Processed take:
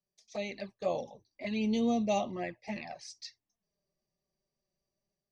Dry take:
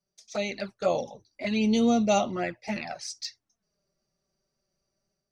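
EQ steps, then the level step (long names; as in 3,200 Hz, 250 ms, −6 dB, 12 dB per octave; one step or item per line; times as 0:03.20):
Butterworth band-reject 1,400 Hz, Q 3.8
high-shelf EQ 7,900 Hz −12 dB
−6.5 dB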